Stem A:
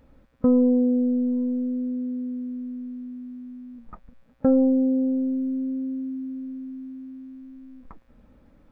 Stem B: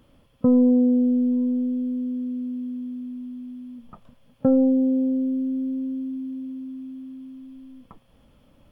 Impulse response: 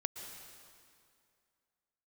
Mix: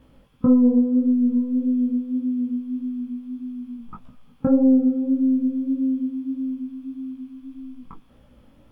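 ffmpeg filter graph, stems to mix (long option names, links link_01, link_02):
-filter_complex "[0:a]volume=1dB,asplit=2[link_01][link_02];[link_02]volume=-11.5dB[link_03];[1:a]acompressor=threshold=-22dB:ratio=6,volume=2.5dB[link_04];[2:a]atrim=start_sample=2205[link_05];[link_03][link_05]afir=irnorm=-1:irlink=0[link_06];[link_01][link_04][link_06]amix=inputs=3:normalize=0,flanger=delay=15:depth=6.8:speed=1.7"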